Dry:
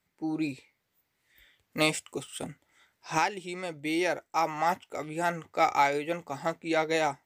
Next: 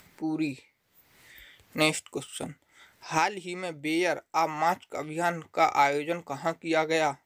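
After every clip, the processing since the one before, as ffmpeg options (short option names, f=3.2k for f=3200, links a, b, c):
-af "acompressor=mode=upward:threshold=-43dB:ratio=2.5,volume=1.5dB"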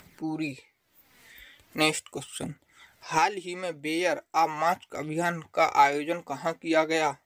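-af "aphaser=in_gain=1:out_gain=1:delay=4.5:decay=0.42:speed=0.39:type=triangular"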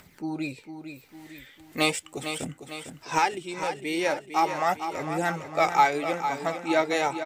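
-af "aecho=1:1:453|906|1359|1812|2265|2718:0.355|0.181|0.0923|0.0471|0.024|0.0122"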